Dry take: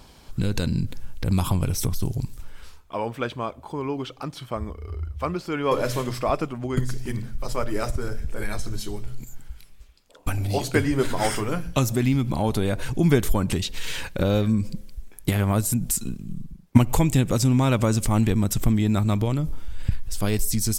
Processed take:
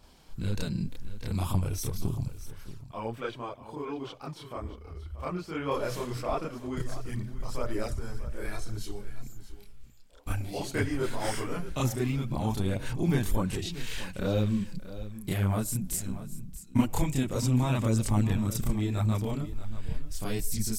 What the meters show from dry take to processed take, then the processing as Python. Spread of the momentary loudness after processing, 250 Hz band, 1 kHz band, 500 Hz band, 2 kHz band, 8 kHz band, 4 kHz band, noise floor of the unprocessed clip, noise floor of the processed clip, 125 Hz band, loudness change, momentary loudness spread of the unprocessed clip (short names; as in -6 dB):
14 LU, -7.0 dB, -7.5 dB, -7.5 dB, -7.0 dB, -7.5 dB, -7.5 dB, -49 dBFS, -48 dBFS, -6.5 dB, -7.0 dB, 13 LU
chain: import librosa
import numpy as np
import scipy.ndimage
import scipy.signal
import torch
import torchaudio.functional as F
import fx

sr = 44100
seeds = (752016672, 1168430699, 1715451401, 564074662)

p1 = fx.chorus_voices(x, sr, voices=2, hz=0.97, base_ms=30, depth_ms=3.3, mix_pct=60)
p2 = p1 + fx.echo_single(p1, sr, ms=633, db=-14.5, dry=0)
y = F.gain(torch.from_numpy(p2), -4.5).numpy()